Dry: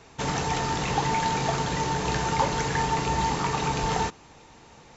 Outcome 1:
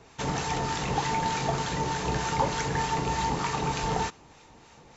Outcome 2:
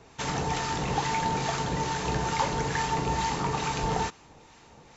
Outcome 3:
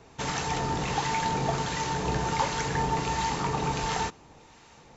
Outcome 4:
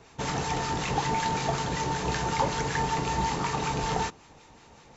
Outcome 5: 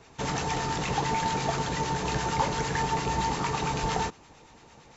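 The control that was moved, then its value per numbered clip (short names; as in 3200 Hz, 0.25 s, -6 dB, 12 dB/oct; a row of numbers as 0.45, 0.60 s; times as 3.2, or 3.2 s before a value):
harmonic tremolo, rate: 3.3, 2.3, 1.4, 5.3, 8.8 Hz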